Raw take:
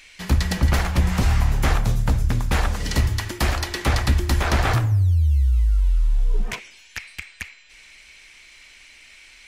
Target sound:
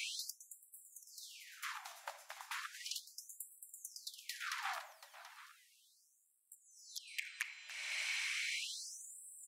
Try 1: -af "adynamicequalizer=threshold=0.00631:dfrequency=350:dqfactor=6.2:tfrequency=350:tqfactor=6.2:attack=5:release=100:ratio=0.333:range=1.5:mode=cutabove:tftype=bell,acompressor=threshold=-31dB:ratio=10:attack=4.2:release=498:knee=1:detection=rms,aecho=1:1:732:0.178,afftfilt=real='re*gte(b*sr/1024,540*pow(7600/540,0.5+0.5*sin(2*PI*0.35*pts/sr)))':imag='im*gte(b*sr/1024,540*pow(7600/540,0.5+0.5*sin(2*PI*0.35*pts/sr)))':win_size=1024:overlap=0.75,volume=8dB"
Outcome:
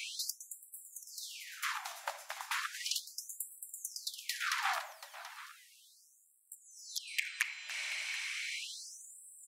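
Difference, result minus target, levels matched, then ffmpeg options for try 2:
compressor: peak gain reduction -7.5 dB
-af "adynamicequalizer=threshold=0.00631:dfrequency=350:dqfactor=6.2:tfrequency=350:tqfactor=6.2:attack=5:release=100:ratio=0.333:range=1.5:mode=cutabove:tftype=bell,acompressor=threshold=-39.5dB:ratio=10:attack=4.2:release=498:knee=1:detection=rms,aecho=1:1:732:0.178,afftfilt=real='re*gte(b*sr/1024,540*pow(7600/540,0.5+0.5*sin(2*PI*0.35*pts/sr)))':imag='im*gte(b*sr/1024,540*pow(7600/540,0.5+0.5*sin(2*PI*0.35*pts/sr)))':win_size=1024:overlap=0.75,volume=8dB"

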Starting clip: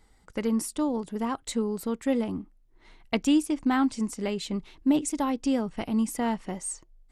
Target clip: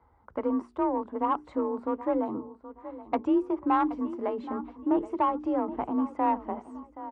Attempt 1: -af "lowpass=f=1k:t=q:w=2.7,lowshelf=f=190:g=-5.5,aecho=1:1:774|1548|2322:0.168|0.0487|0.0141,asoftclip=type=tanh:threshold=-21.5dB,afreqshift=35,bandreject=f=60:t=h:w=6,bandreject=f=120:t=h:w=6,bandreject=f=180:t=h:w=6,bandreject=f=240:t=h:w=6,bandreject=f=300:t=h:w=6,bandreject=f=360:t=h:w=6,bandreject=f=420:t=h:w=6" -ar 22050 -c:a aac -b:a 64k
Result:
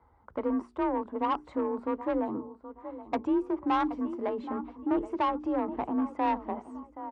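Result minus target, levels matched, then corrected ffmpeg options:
soft clip: distortion +9 dB
-af "lowpass=f=1k:t=q:w=2.7,lowshelf=f=190:g=-5.5,aecho=1:1:774|1548|2322:0.168|0.0487|0.0141,asoftclip=type=tanh:threshold=-15dB,afreqshift=35,bandreject=f=60:t=h:w=6,bandreject=f=120:t=h:w=6,bandreject=f=180:t=h:w=6,bandreject=f=240:t=h:w=6,bandreject=f=300:t=h:w=6,bandreject=f=360:t=h:w=6,bandreject=f=420:t=h:w=6" -ar 22050 -c:a aac -b:a 64k

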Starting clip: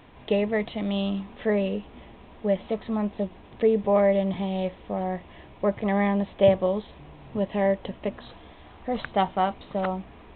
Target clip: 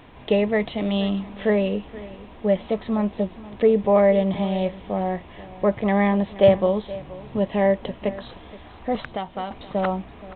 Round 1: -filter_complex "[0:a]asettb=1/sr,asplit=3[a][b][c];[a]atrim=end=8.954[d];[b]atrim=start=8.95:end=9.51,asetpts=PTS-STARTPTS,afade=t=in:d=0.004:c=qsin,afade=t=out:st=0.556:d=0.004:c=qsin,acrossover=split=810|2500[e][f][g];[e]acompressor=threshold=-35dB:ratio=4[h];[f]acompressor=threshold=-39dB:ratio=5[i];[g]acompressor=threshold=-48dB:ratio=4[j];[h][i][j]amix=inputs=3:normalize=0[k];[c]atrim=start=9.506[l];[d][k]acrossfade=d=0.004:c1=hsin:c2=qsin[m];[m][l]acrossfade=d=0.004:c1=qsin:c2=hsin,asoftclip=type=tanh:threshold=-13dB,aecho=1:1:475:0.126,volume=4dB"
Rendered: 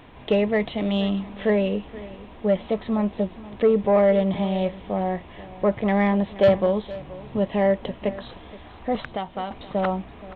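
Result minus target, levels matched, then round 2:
soft clip: distortion +15 dB
-filter_complex "[0:a]asettb=1/sr,asplit=3[a][b][c];[a]atrim=end=8.954[d];[b]atrim=start=8.95:end=9.51,asetpts=PTS-STARTPTS,afade=t=in:d=0.004:c=qsin,afade=t=out:st=0.556:d=0.004:c=qsin,acrossover=split=810|2500[e][f][g];[e]acompressor=threshold=-35dB:ratio=4[h];[f]acompressor=threshold=-39dB:ratio=5[i];[g]acompressor=threshold=-48dB:ratio=4[j];[h][i][j]amix=inputs=3:normalize=0[k];[c]atrim=start=9.506[l];[d][k]acrossfade=d=0.004:c1=hsin:c2=qsin[m];[m][l]acrossfade=d=0.004:c1=qsin:c2=hsin,asoftclip=type=tanh:threshold=-4dB,aecho=1:1:475:0.126,volume=4dB"

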